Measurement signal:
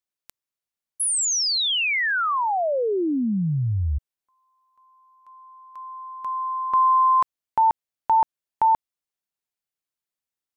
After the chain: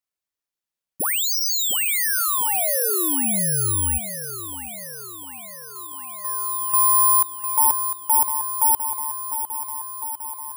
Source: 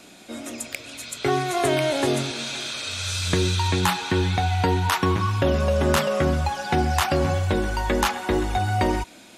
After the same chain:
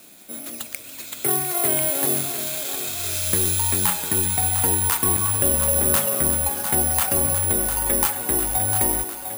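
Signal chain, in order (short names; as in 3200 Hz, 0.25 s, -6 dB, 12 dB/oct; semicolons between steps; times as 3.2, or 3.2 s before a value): thinning echo 0.702 s, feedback 71%, high-pass 210 Hz, level -9 dB; careless resampling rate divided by 4×, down none, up zero stuff; gain -5.5 dB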